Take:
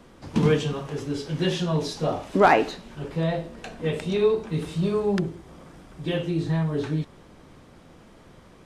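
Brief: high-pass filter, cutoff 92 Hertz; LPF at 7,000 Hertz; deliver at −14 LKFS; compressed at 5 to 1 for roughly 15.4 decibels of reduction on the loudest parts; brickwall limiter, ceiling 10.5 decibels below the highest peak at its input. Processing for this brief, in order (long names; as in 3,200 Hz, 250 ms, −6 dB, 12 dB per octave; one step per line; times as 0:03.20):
high-pass filter 92 Hz
low-pass filter 7,000 Hz
downward compressor 5 to 1, threshold −30 dBFS
level +24 dB
brickwall limiter −4.5 dBFS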